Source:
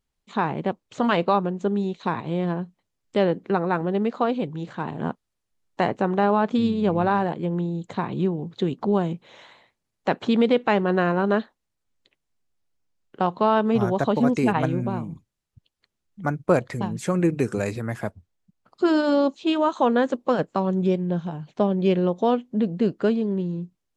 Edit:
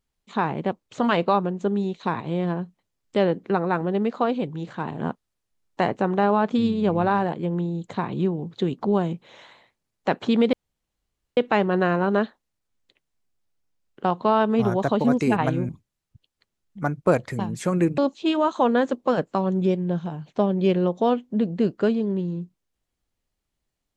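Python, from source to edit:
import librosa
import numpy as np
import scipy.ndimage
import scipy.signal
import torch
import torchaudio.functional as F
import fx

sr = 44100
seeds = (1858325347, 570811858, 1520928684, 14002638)

y = fx.edit(x, sr, fx.insert_room_tone(at_s=10.53, length_s=0.84),
    fx.cut(start_s=14.85, length_s=0.26),
    fx.cut(start_s=17.4, length_s=1.79), tone=tone)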